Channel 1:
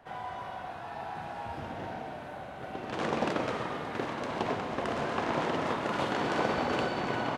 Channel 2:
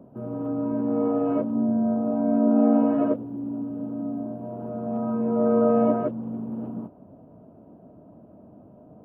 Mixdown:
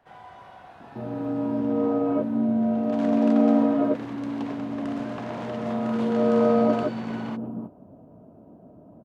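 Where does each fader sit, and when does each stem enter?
−6.5, 0.0 decibels; 0.00, 0.80 seconds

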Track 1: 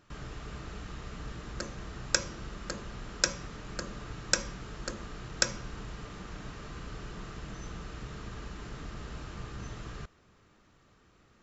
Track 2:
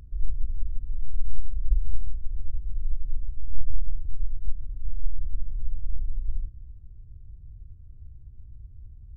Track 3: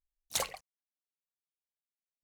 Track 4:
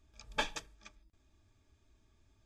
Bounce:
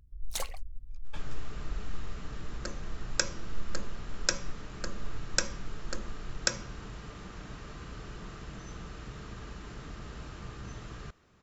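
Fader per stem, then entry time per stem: −1.5, −13.5, −3.5, −16.5 decibels; 1.05, 0.00, 0.00, 0.75 seconds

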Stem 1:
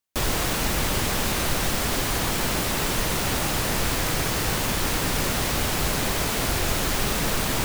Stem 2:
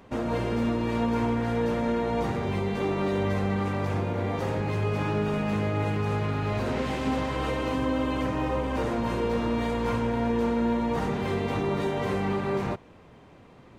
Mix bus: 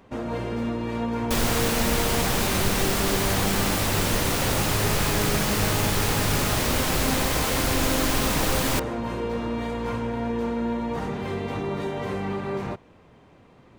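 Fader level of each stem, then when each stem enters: 0.0, −1.5 decibels; 1.15, 0.00 seconds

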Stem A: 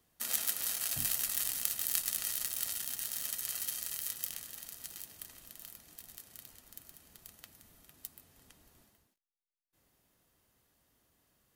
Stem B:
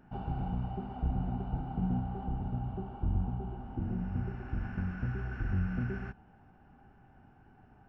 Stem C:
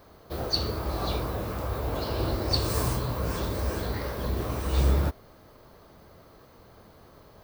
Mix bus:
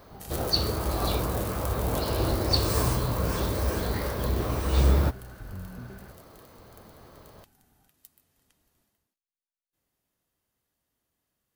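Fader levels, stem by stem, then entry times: −8.0, −8.0, +2.0 decibels; 0.00, 0.00, 0.00 seconds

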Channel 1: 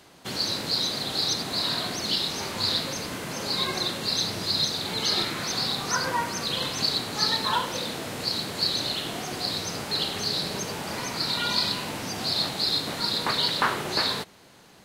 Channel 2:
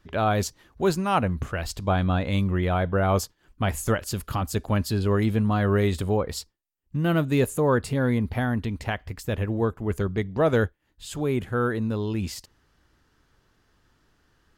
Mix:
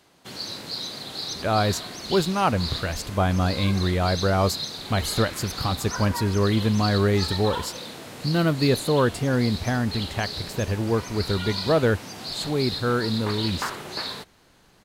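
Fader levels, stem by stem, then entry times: −6.0, +1.0 decibels; 0.00, 1.30 seconds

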